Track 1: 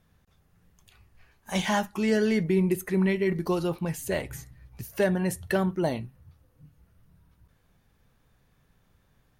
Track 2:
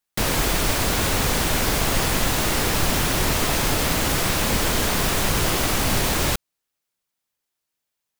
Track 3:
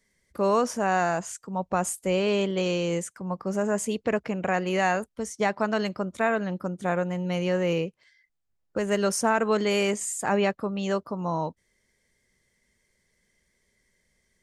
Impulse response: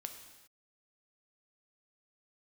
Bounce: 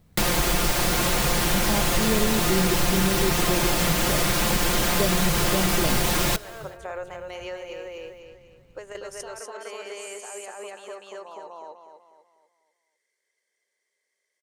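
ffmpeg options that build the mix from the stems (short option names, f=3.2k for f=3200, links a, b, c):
-filter_complex "[0:a]tiltshelf=f=1.3k:g=7,acrusher=samples=11:mix=1:aa=0.000001,volume=1.5dB,asplit=2[a][b];[1:a]aecho=1:1:5.7:0.91,volume=2.5dB,asplit=2[c][d];[d]volume=-10dB[e];[2:a]highpass=f=410:w=0.5412,highpass=f=410:w=1.3066,alimiter=limit=-22.5dB:level=0:latency=1:release=13,volume=-3dB,asplit=2[f][g];[g]volume=-6.5dB[h];[b]apad=whole_len=635947[i];[f][i]sidechaingate=range=-8dB:threshold=-54dB:ratio=16:detection=peak[j];[3:a]atrim=start_sample=2205[k];[e][k]afir=irnorm=-1:irlink=0[l];[h]aecho=0:1:247|494|741|988|1235|1482:1|0.4|0.16|0.064|0.0256|0.0102[m];[a][c][j][l][m]amix=inputs=5:normalize=0,acompressor=threshold=-25dB:ratio=2"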